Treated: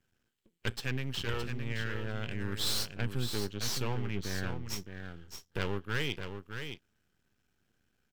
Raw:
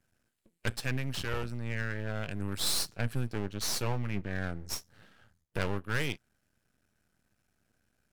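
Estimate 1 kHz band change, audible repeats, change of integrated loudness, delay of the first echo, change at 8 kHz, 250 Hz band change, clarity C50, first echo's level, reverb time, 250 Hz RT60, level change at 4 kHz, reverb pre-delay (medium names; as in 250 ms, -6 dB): -2.0 dB, 1, -1.5 dB, 616 ms, -3.5 dB, -1.0 dB, no reverb, -7.5 dB, no reverb, no reverb, +0.5 dB, no reverb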